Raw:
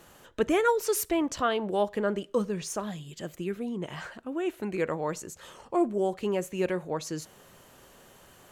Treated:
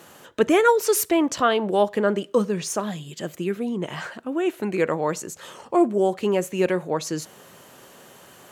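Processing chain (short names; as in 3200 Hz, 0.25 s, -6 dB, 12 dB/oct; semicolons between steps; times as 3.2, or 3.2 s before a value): HPF 130 Hz 12 dB/oct; gain +7 dB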